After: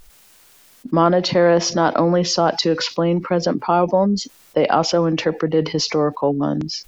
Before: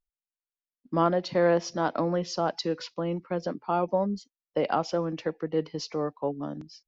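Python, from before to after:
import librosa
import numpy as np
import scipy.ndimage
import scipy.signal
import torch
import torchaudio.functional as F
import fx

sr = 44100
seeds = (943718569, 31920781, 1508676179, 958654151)

y = fx.env_flatten(x, sr, amount_pct=50)
y = F.gain(torch.from_numpy(y), 7.5).numpy()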